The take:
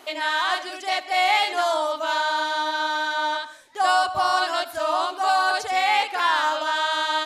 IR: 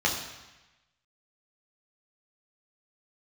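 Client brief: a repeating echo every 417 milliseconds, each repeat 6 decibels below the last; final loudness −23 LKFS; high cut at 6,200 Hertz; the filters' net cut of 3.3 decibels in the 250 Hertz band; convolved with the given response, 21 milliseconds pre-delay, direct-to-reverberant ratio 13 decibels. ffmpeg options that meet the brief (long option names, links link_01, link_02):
-filter_complex "[0:a]lowpass=6200,equalizer=frequency=250:width_type=o:gain=-5,aecho=1:1:417|834|1251|1668|2085|2502:0.501|0.251|0.125|0.0626|0.0313|0.0157,asplit=2[link_01][link_02];[1:a]atrim=start_sample=2205,adelay=21[link_03];[link_02][link_03]afir=irnorm=-1:irlink=0,volume=-25.5dB[link_04];[link_01][link_04]amix=inputs=2:normalize=0,volume=-2dB"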